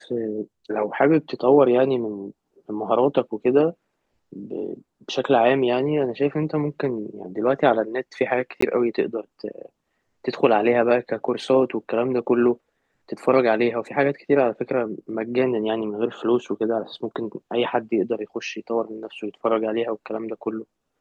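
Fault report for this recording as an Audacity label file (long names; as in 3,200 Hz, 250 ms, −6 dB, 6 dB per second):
8.610000	8.620000	drop-out 14 ms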